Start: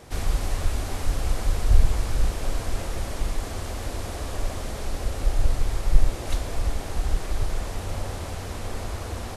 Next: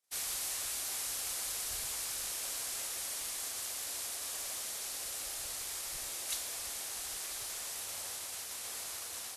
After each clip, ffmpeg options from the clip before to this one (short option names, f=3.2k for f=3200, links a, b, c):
-af "agate=range=-33dB:threshold=-30dB:ratio=3:detection=peak,aderivative,volume=4.5dB"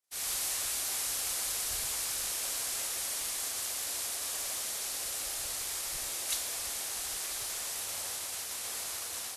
-af "dynaudnorm=f=130:g=3:m=7.5dB,volume=-3.5dB"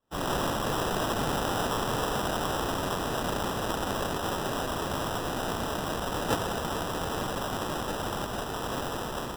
-af "acrusher=samples=20:mix=1:aa=0.000001,volume=5.5dB"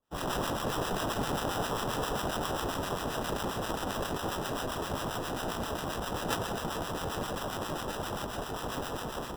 -filter_complex "[0:a]acrossover=split=1000[a][b];[a]aeval=exprs='val(0)*(1-0.7/2+0.7/2*cos(2*PI*7.5*n/s))':c=same[c];[b]aeval=exprs='val(0)*(1-0.7/2-0.7/2*cos(2*PI*7.5*n/s))':c=same[d];[c][d]amix=inputs=2:normalize=0"